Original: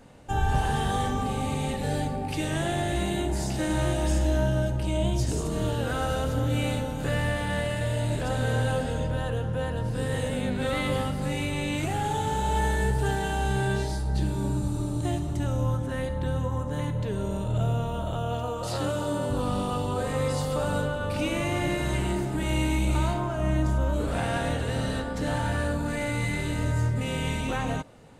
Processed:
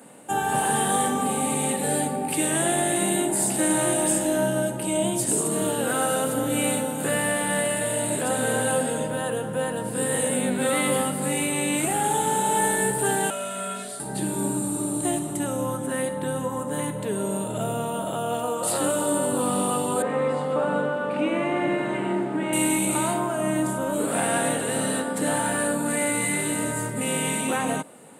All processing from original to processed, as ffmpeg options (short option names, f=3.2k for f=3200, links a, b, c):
-filter_complex "[0:a]asettb=1/sr,asplit=3[a][b][c];[a]atrim=end=13.304[d];[b]atrim=start=13.3:end=14,asetpts=PTS-STARTPTS,afade=t=in:d=0.004:c=qsin,afade=t=out:st=0.696:d=0.004:c=qsin,highpass=f=1.3k:p=1,aemphasis=mode=reproduction:type=cd,afreqshift=-200[e];[c]atrim=start=13.996[f];[d][e]acrossfade=d=0.004:c1=hsin:c2=qsin[g];[g][f]acrossfade=d=0.004:c1=qsin:c2=hsin,asettb=1/sr,asplit=3[h][i][j];[h]atrim=end=20.024[k];[i]atrim=start=20.02:end=22.53,asetpts=PTS-STARTPTS,afade=t=in:d=0.004:c=qsin,afade=t=out:st=2.506:d=0.004:c=qsin,acrusher=bits=6:mix=0:aa=0.5,highpass=140,lowpass=2.2k[l];[j]atrim=start=22.526[m];[k][l]acrossfade=d=0.004:c1=hsin:c2=qsin[n];[n][m]acrossfade=d=0.004:c1=qsin:c2=hsin,highpass=f=180:w=0.5412,highpass=f=180:w=1.3066,highshelf=f=7.1k:t=q:w=3:g=8.5,acontrast=26"